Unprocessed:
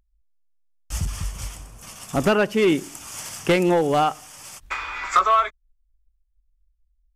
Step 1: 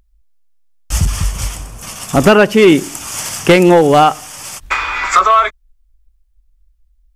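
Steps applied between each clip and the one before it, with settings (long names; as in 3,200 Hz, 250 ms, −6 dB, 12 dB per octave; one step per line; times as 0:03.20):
boost into a limiter +13 dB
level −1 dB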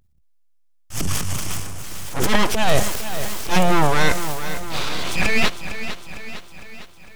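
transient designer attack −11 dB, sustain +9 dB
full-wave rectification
feedback echo at a low word length 455 ms, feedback 55%, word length 7 bits, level −11 dB
level −5 dB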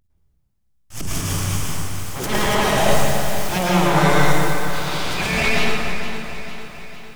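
dense smooth reverb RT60 2.6 s, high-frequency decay 0.6×, pre-delay 95 ms, DRR −6.5 dB
level −5 dB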